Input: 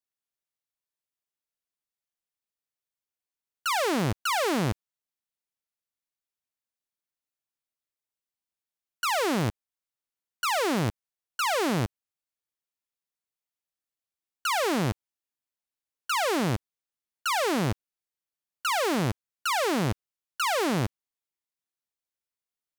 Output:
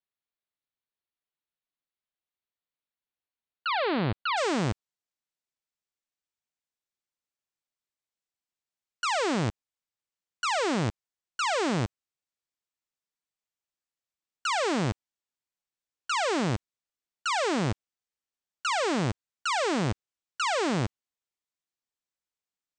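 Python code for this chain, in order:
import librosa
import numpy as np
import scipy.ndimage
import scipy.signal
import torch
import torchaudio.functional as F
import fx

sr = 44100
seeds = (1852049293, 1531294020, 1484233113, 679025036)

y = fx.steep_lowpass(x, sr, hz=fx.steps((0.0, 4500.0), (4.36, 8600.0)), slope=96)
y = y * 10.0 ** (-1.0 / 20.0)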